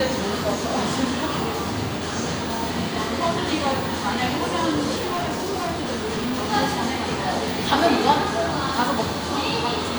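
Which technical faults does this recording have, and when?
0:04.95–0:06.54: clipping −21.5 dBFS

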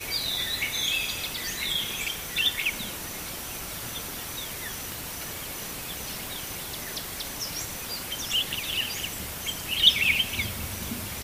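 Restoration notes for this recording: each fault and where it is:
0:04.92: click

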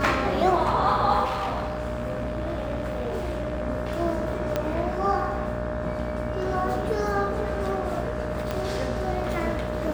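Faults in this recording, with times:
mains buzz 60 Hz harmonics 30 −32 dBFS
whistle 610 Hz −31 dBFS
0:01.24–0:03.62: clipping −24.5 dBFS
0:04.56: click −11 dBFS
0:08.51: click −14 dBFS

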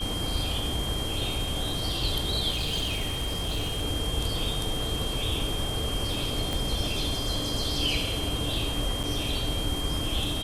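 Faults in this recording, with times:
whistle 3,200 Hz −33 dBFS
0:02.51–0:03.85: clipping −24.5 dBFS
0:06.53: click −16 dBFS
0:09.03–0:09.04: drop-out 6.7 ms

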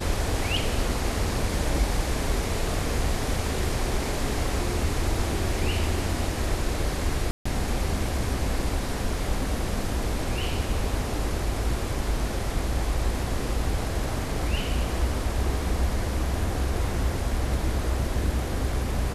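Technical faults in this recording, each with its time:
0:07.31–0:07.46: drop-out 145 ms

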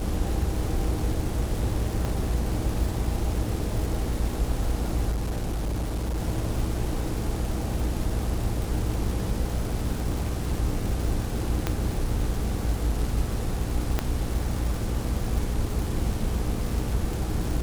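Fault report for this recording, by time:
surface crackle 380 per second −32 dBFS
mains hum 60 Hz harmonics 8 −31 dBFS
0:02.05: drop-out 2.7 ms
0:05.11–0:06.18: clipping −24 dBFS
0:11.67: click −10 dBFS
0:13.99: click −10 dBFS

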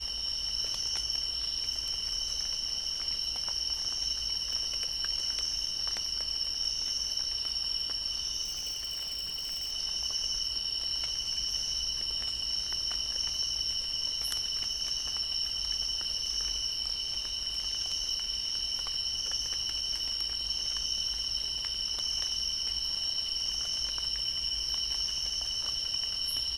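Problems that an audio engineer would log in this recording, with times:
0:04.53: drop-out 2.3 ms
0:08.43–0:09.73: clipping −32 dBFS

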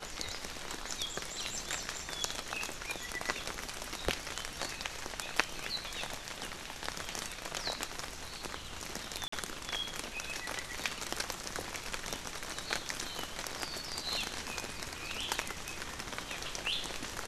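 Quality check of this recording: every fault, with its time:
0:09.28–0:09.32: drop-out 44 ms

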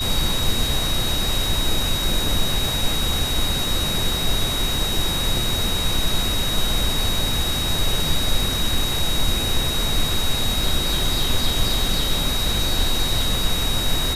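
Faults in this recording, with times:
whistle 3,800 Hz −24 dBFS

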